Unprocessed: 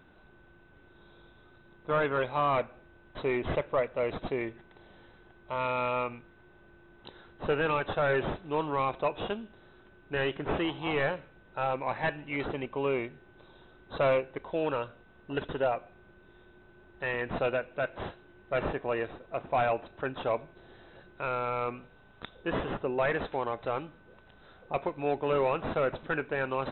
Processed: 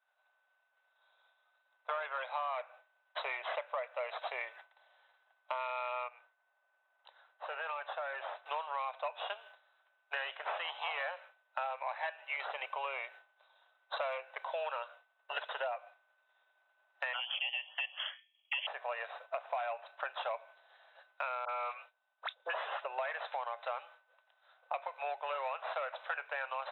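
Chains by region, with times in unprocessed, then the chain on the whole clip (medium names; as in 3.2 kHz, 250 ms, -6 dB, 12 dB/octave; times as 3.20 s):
6.08–8.46 s: compression 2:1, threshold -48 dBFS + treble shelf 3.1 kHz -7.5 dB
17.13–18.67 s: treble shelf 2.5 kHz +8.5 dB + touch-sensitive phaser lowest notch 230 Hz, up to 1.9 kHz, full sweep at -27.5 dBFS + frequency inversion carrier 3.3 kHz
21.45–22.85 s: expander -45 dBFS + upward compressor, threshold -41 dBFS + phase dispersion highs, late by 47 ms, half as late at 1.4 kHz
whole clip: expander -43 dBFS; steep high-pass 600 Hz 48 dB/octave; compression 6:1, threshold -45 dBFS; trim +9 dB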